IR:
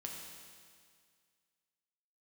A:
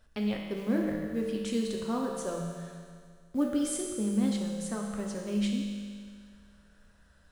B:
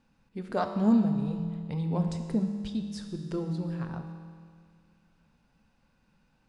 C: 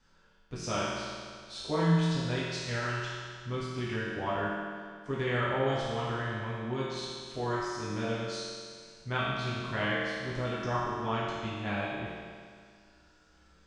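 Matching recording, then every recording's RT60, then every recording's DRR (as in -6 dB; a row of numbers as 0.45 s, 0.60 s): A; 2.0 s, 2.0 s, 2.0 s; -1.0 dB, 5.0 dB, -9.5 dB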